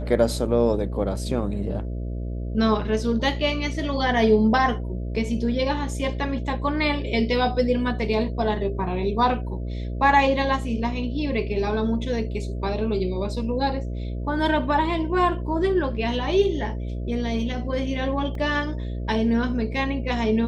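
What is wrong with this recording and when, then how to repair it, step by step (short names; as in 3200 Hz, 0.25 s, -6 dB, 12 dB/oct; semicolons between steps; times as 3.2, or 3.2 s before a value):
buzz 60 Hz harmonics 11 -29 dBFS
18.35 gap 2.2 ms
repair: de-hum 60 Hz, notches 11; interpolate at 18.35, 2.2 ms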